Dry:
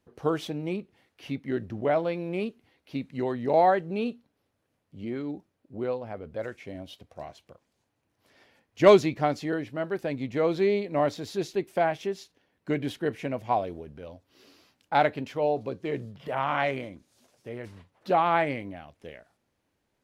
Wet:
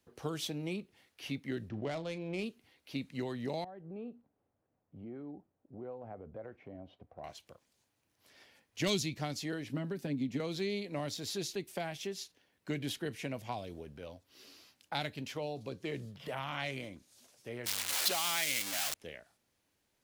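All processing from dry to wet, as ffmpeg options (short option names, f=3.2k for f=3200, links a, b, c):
-filter_complex "[0:a]asettb=1/sr,asplit=3[a][b][c];[a]atrim=end=1.694[d];[b]atrim=start=1.69:end=2.44,asetpts=PTS-STARTPTS,afade=t=in:d=0.004:c=qsin,afade=t=out:st=0.746:d=0.004:c=qsin,adynamicsmooth=sensitivity=5.5:basefreq=2.9k,asplit=2[e][f];[f]adelay=37,volume=-14dB[g];[e][g]amix=inputs=2:normalize=0,atrim=end_sample=33075[h];[c]atrim=start=2.436[i];[d][h]acrossfade=d=0.004:c1=hsin:c2=qsin[j];[j][i]acrossfade=d=0.004:c1=qsin:c2=hsin,asettb=1/sr,asplit=3[k][l][m];[k]atrim=end=3.644[n];[l]atrim=start=3.64:end=7.24,asetpts=PTS-STARTPTS,afade=t=in:d=0.004:c=qsin,afade=t=out:st=3.596:d=0.004:c=qsin,lowpass=1k,acompressor=threshold=-40dB:ratio=2.5:attack=3.2:release=140:knee=1:detection=peak,equalizer=f=750:w=5.6:g=4.5[o];[m]atrim=start=7.236[p];[n][o]acrossfade=d=0.004:c1=hsin:c2=qsin[q];[q][p]acrossfade=d=0.004:c1=qsin:c2=hsin,asettb=1/sr,asplit=3[r][s][t];[r]atrim=end=9.694[u];[s]atrim=start=9.69:end=10.4,asetpts=PTS-STARTPTS,afade=t=in:d=0.004:c=qsin,afade=t=out:st=0.706:d=0.004:c=qsin,equalizer=f=220:w=1.2:g=15,acrossover=split=320|2100[v][w][x];[v]acompressor=threshold=-32dB:ratio=4[y];[w]acompressor=threshold=-34dB:ratio=4[z];[x]acompressor=threshold=-54dB:ratio=4[aa];[y][z][aa]amix=inputs=3:normalize=0,aecho=1:1:7.2:0.44,atrim=end_sample=31311[ab];[t]atrim=start=10.396[ac];[u][ab]acrossfade=d=0.004:c1=hsin:c2=qsin[ad];[ad][ac]acrossfade=d=0.004:c1=qsin:c2=hsin,asettb=1/sr,asplit=3[ae][af][ag];[ae]atrim=end=17.664[ah];[af]atrim=start=17.66:end=18.94,asetpts=PTS-STARTPTS,afade=t=in:d=0.004:c=qsin,afade=t=out:st=1.276:d=0.004:c=qsin,aeval=exprs='val(0)+0.5*0.0266*sgn(val(0))':c=same,highpass=f=290:p=1,tiltshelf=f=790:g=-7.5[ai];[ag]atrim=start=18.936[aj];[ah][ai]acrossfade=d=0.004:c1=hsin:c2=qsin[ak];[ak][aj]acrossfade=d=0.004:c1=qsin:c2=hsin,highshelf=f=2.4k:g=10.5,acrossover=split=230|3000[al][am][an];[am]acompressor=threshold=-33dB:ratio=6[ao];[al][ao][an]amix=inputs=3:normalize=0,volume=-5dB"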